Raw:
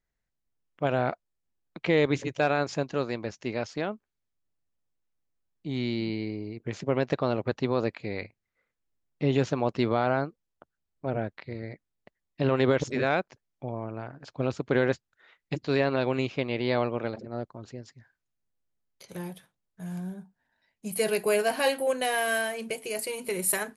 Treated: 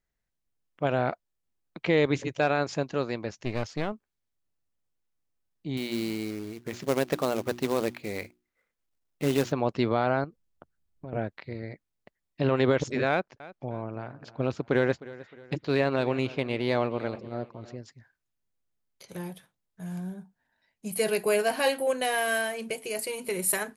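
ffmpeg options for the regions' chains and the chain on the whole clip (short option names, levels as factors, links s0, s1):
-filter_complex "[0:a]asettb=1/sr,asplit=3[s0][s1][s2];[s0]atrim=end=3.384[s3];[s1]atrim=start=3.38:end=3.93,asetpts=PTS-STARTPTS,afade=t=in:d=0.004:c=qsin,afade=t=out:st=0.546:d=0.004:c=qsin,aeval=exprs='clip(val(0),-1,0.015)':c=same,lowshelf=f=89:g=10.5[s4];[s2]atrim=start=3.926[s5];[s3][s4]acrossfade=d=0.004:c1=hsin:c2=qsin[s6];[s6][s5]acrossfade=d=0.004:c1=qsin:c2=hsin,asettb=1/sr,asplit=3[s7][s8][s9];[s7]atrim=end=5.774[s10];[s8]atrim=start=5.77:end=9.52,asetpts=PTS-STARTPTS,afade=t=in:d=0.004:c=qsin,afade=t=out:st=3.746:d=0.004:c=qsin,equalizer=f=120:t=o:w=0.51:g=-6.5,bandreject=f=60:t=h:w=6,bandreject=f=120:t=h:w=6,bandreject=f=180:t=h:w=6,bandreject=f=240:t=h:w=6,bandreject=f=300:t=h:w=6,bandreject=f=360:t=h:w=6,acrusher=bits=3:mode=log:mix=0:aa=0.000001[s11];[s9]atrim=start=9.516[s12];[s10][s11]acrossfade=d=0.004:c1=hsin:c2=qsin[s13];[s13][s12]acrossfade=d=0.004:c1=qsin:c2=hsin,asettb=1/sr,asplit=3[s14][s15][s16];[s14]atrim=end=10.244[s17];[s15]atrim=start=10.24:end=11.13,asetpts=PTS-STARTPTS,afade=t=in:d=0.004:c=qsin,afade=t=out:st=0.886:d=0.004:c=qsin,lowshelf=f=230:g=9.5,acompressor=threshold=0.0126:ratio=4:attack=3.2:release=140:knee=1:detection=peak[s18];[s16]atrim=start=11.126[s19];[s17][s18]acrossfade=d=0.004:c1=hsin:c2=qsin[s20];[s20][s19]acrossfade=d=0.004:c1=qsin:c2=hsin,asettb=1/sr,asplit=3[s21][s22][s23];[s21]atrim=end=13.094[s24];[s22]atrim=start=13.09:end=17.77,asetpts=PTS-STARTPTS,afade=t=in:d=0.004:c=qsin,afade=t=out:st=4.676:d=0.004:c=qsin,adynamicsmooth=sensitivity=5.5:basefreq=7100,aecho=1:1:309|618|927:0.119|0.0511|0.022,atrim=end_sample=206388[s25];[s23]atrim=start=17.766[s26];[s24][s25]acrossfade=d=0.004:c1=hsin:c2=qsin[s27];[s27][s26]acrossfade=d=0.004:c1=qsin:c2=hsin"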